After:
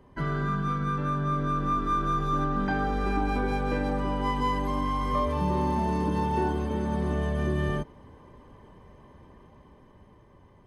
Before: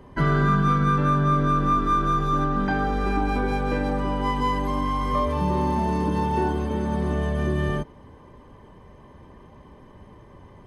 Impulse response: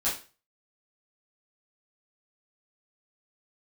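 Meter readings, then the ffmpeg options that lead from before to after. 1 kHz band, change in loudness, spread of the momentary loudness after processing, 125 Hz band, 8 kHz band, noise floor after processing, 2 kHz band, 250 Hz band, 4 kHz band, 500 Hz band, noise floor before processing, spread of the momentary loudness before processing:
-4.5 dB, -4.5 dB, 2 LU, -5.5 dB, -4.0 dB, -55 dBFS, -5.0 dB, -4.5 dB, -4.0 dB, -4.0 dB, -49 dBFS, 5 LU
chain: -af "dynaudnorm=f=390:g=9:m=5.5dB,volume=-8.5dB"

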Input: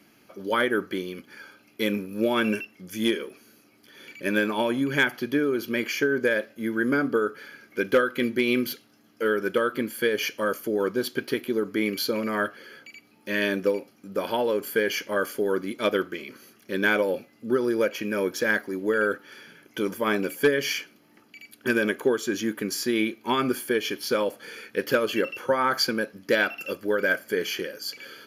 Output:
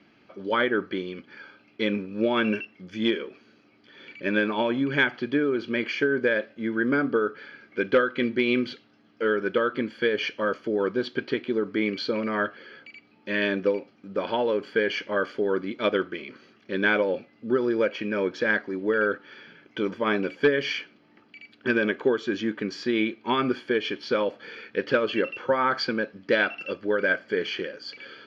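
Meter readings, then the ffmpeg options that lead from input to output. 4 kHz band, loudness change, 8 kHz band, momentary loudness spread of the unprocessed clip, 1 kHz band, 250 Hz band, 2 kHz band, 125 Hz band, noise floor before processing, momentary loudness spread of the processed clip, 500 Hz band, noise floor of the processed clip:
-1.5 dB, 0.0 dB, under -15 dB, 10 LU, 0.0 dB, 0.0 dB, 0.0 dB, 0.0 dB, -59 dBFS, 10 LU, 0.0 dB, -60 dBFS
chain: -af "lowpass=f=4.2k:w=0.5412,lowpass=f=4.2k:w=1.3066"

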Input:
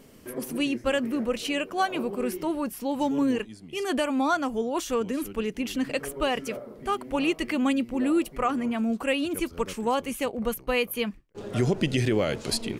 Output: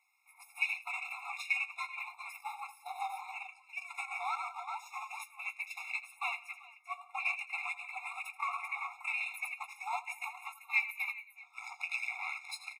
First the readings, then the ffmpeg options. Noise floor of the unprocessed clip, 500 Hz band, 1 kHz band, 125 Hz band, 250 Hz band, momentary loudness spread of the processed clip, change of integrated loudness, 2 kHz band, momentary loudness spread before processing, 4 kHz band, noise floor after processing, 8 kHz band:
-49 dBFS, -31.5 dB, -9.0 dB, under -40 dB, under -40 dB, 11 LU, -10.0 dB, -1.5 dB, 6 LU, -15.0 dB, -62 dBFS, -15.0 dB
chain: -filter_complex "[0:a]acrossover=split=720[a][b];[a]acontrast=23[c];[c][b]amix=inputs=2:normalize=0,afreqshift=-87,aecho=1:1:83|140|179|269|390:0.422|0.106|0.126|0.15|0.335,aeval=exprs='clip(val(0),-1,0.1)':c=same,adynamicequalizer=threshold=0.0112:dfrequency=150:dqfactor=6.9:tfrequency=150:tqfactor=6.9:attack=5:release=100:ratio=0.375:range=3:mode=boostabove:tftype=bell,flanger=delay=8.1:depth=4.6:regen=-57:speed=1.8:shape=sinusoidal,asplit=2[d][e];[e]adelay=17,volume=-9dB[f];[d][f]amix=inputs=2:normalize=0,areverse,acompressor=mode=upward:threshold=-44dB:ratio=2.5,areverse,alimiter=limit=-19.5dB:level=0:latency=1:release=79,agate=range=-15dB:threshold=-27dB:ratio=16:detection=peak,equalizer=f=2.2k:w=2.7:g=14.5,afftfilt=real='re*eq(mod(floor(b*sr/1024/700),2),1)':imag='im*eq(mod(floor(b*sr/1024/700),2),1)':win_size=1024:overlap=0.75"

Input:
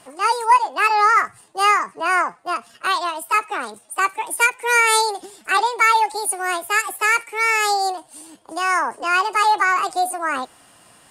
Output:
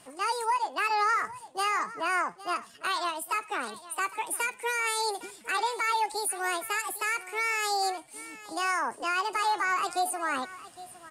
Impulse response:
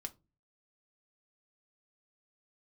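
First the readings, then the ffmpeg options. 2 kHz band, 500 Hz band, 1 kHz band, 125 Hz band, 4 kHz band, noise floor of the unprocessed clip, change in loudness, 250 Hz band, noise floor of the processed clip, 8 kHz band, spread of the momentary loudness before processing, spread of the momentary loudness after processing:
-10.5 dB, -8.5 dB, -10.5 dB, n/a, -8.0 dB, -52 dBFS, -10.5 dB, -6.5 dB, -52 dBFS, -8.0 dB, 11 LU, 8 LU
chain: -af "equalizer=f=810:w=0.56:g=-3.5,alimiter=limit=-15.5dB:level=0:latency=1:release=81,aecho=1:1:809:0.141,volume=-4dB"

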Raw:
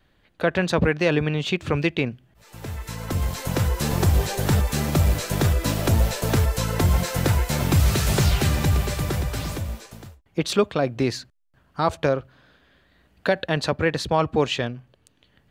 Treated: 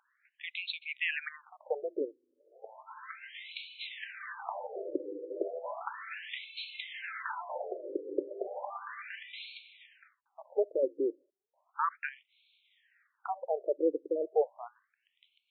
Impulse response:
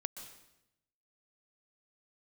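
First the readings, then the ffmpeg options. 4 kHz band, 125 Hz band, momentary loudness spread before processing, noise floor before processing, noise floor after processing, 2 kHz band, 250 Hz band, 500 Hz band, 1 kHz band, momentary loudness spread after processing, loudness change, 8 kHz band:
-14.5 dB, under -40 dB, 10 LU, -63 dBFS, -81 dBFS, -11.0 dB, -17.5 dB, -9.0 dB, -10.5 dB, 15 LU, -13.5 dB, under -40 dB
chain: -af "highpass=f=120:p=1,aeval=exprs='val(0)+0.02*(sin(2*PI*50*n/s)+sin(2*PI*2*50*n/s)/2+sin(2*PI*3*50*n/s)/3+sin(2*PI*4*50*n/s)/4+sin(2*PI*5*50*n/s)/5)':c=same,afftfilt=real='re*between(b*sr/1024,390*pow(3100/390,0.5+0.5*sin(2*PI*0.34*pts/sr))/1.41,390*pow(3100/390,0.5+0.5*sin(2*PI*0.34*pts/sr))*1.41)':imag='im*between(b*sr/1024,390*pow(3100/390,0.5+0.5*sin(2*PI*0.34*pts/sr))/1.41,390*pow(3100/390,0.5+0.5*sin(2*PI*0.34*pts/sr))*1.41)':win_size=1024:overlap=0.75,volume=-4dB"

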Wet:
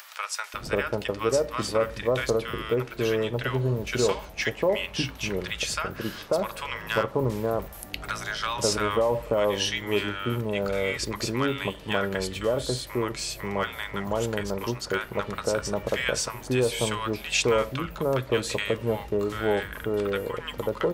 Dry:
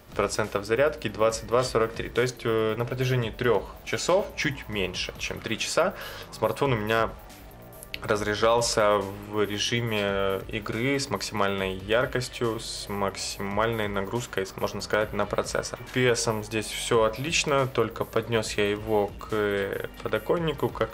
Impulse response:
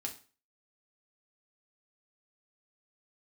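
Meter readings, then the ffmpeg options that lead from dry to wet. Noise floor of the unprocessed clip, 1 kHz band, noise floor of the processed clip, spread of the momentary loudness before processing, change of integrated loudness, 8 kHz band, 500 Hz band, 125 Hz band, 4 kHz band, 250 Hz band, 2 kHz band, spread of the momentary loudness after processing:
-44 dBFS, -2.5 dB, -42 dBFS, 8 LU, -1.0 dB, 0.0 dB, -0.5 dB, 0.0 dB, 0.0 dB, 0.0 dB, -0.5 dB, 6 LU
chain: -filter_complex "[0:a]acompressor=mode=upward:threshold=-31dB:ratio=2.5,acrossover=split=980[a][b];[a]adelay=540[c];[c][b]amix=inputs=2:normalize=0"

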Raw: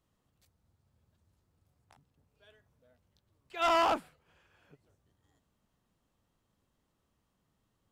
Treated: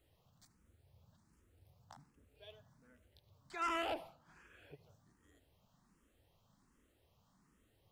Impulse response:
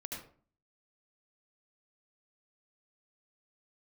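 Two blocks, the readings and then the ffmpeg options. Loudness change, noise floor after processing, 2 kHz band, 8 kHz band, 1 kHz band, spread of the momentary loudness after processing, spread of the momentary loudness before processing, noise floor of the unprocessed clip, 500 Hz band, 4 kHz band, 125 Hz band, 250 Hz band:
-10.5 dB, -75 dBFS, -7.0 dB, -8.0 dB, -11.0 dB, 22 LU, 13 LU, -79 dBFS, -11.5 dB, -9.5 dB, -1.5 dB, -7.0 dB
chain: -filter_complex "[0:a]acompressor=threshold=-50dB:ratio=2,asplit=2[a][b];[1:a]atrim=start_sample=2205[c];[b][c]afir=irnorm=-1:irlink=0,volume=-13dB[d];[a][d]amix=inputs=2:normalize=0,asplit=2[e][f];[f]afreqshift=1.3[g];[e][g]amix=inputs=2:normalize=1,volume=6dB"

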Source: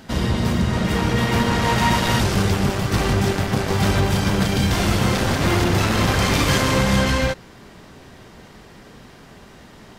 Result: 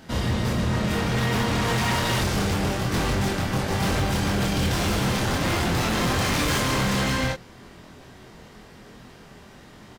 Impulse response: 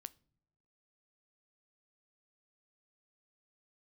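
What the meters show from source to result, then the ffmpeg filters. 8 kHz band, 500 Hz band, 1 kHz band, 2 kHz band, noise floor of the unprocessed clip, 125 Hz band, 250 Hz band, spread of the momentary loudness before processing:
-2.5 dB, -5.0 dB, -4.5 dB, -3.5 dB, -45 dBFS, -5.0 dB, -5.0 dB, 3 LU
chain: -filter_complex "[0:a]asplit=2[a][b];[b]adelay=24,volume=-2.5dB[c];[a][c]amix=inputs=2:normalize=0,aeval=exprs='0.224*(abs(mod(val(0)/0.224+3,4)-2)-1)':c=same,volume=-4.5dB"

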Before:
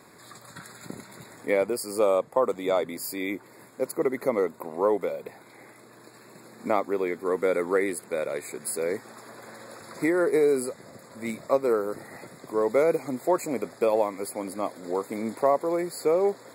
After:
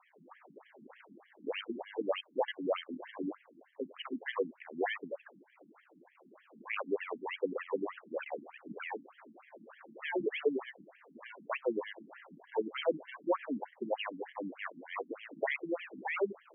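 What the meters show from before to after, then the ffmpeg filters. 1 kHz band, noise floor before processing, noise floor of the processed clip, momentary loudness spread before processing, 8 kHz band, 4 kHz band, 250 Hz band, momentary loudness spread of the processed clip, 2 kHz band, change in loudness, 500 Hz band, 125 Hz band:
-10.5 dB, -52 dBFS, -67 dBFS, 20 LU, under -40 dB, -1.5 dB, -10.5 dB, 21 LU, -4.0 dB, -11.0 dB, -12.5 dB, -15.0 dB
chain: -af "acrusher=samples=24:mix=1:aa=0.000001:lfo=1:lforange=24:lforate=1.7,aeval=exprs='0.316*(cos(1*acos(clip(val(0)/0.316,-1,1)))-cos(1*PI/2))+0.002*(cos(2*acos(clip(val(0)/0.316,-1,1)))-cos(2*PI/2))':c=same,afftfilt=real='re*between(b*sr/1024,220*pow(2400/220,0.5+0.5*sin(2*PI*3.3*pts/sr))/1.41,220*pow(2400/220,0.5+0.5*sin(2*PI*3.3*pts/sr))*1.41)':imag='im*between(b*sr/1024,220*pow(2400/220,0.5+0.5*sin(2*PI*3.3*pts/sr))/1.41,220*pow(2400/220,0.5+0.5*sin(2*PI*3.3*pts/sr))*1.41)':win_size=1024:overlap=0.75,volume=-3.5dB"

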